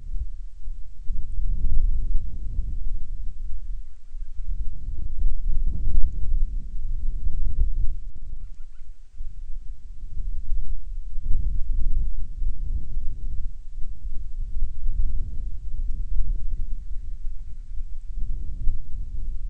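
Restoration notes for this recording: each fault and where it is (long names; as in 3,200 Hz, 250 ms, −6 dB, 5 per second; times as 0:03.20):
0:04.67–0:05.12: clipping −16.5 dBFS
0:08.03–0:08.43: clipping −22.5 dBFS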